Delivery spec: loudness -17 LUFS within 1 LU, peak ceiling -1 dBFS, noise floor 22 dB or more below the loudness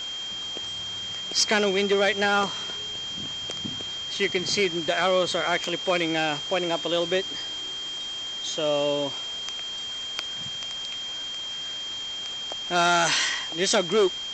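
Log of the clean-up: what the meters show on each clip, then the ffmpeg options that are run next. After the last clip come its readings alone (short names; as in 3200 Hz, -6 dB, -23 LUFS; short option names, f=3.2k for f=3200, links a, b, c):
steady tone 3200 Hz; tone level -31 dBFS; noise floor -34 dBFS; noise floor target -48 dBFS; loudness -25.5 LUFS; peak -12.5 dBFS; loudness target -17.0 LUFS
-> -af "bandreject=f=3.2k:w=30"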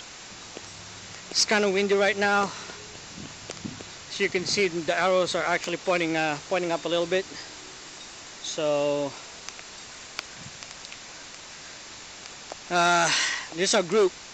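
steady tone none; noise floor -44 dBFS; noise floor target -47 dBFS
-> -af "afftdn=nr=6:nf=-44"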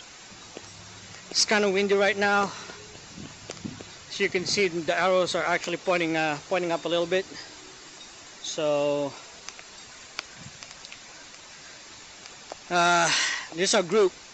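noise floor -47 dBFS; loudness -24.5 LUFS; peak -13.0 dBFS; loudness target -17.0 LUFS
-> -af "volume=7.5dB"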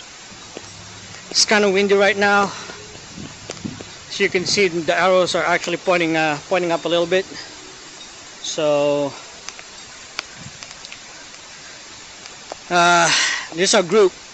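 loudness -17.0 LUFS; peak -5.5 dBFS; noise floor -39 dBFS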